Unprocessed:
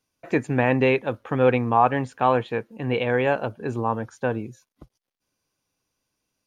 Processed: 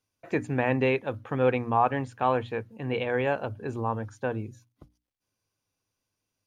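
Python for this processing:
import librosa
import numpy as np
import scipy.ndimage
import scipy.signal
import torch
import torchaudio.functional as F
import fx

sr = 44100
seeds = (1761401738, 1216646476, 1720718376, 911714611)

y = fx.peak_eq(x, sr, hz=100.0, db=13.0, octaves=0.23)
y = fx.hum_notches(y, sr, base_hz=60, count=5)
y = F.gain(torch.from_numpy(y), -5.0).numpy()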